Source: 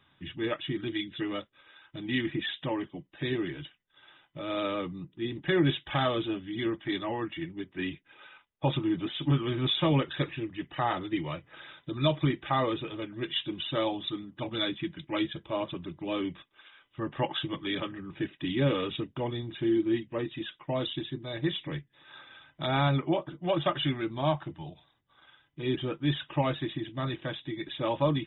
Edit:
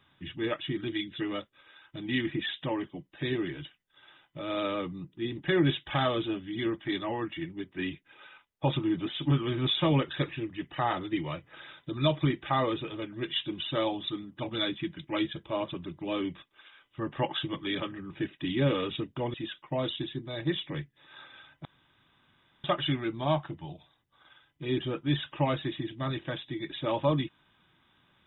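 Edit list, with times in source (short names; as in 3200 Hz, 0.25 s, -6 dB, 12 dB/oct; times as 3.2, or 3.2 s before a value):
19.34–20.31 cut
22.62–23.61 room tone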